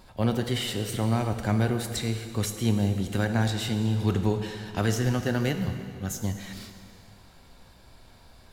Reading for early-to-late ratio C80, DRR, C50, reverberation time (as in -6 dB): 8.5 dB, 6.0 dB, 7.5 dB, 2.3 s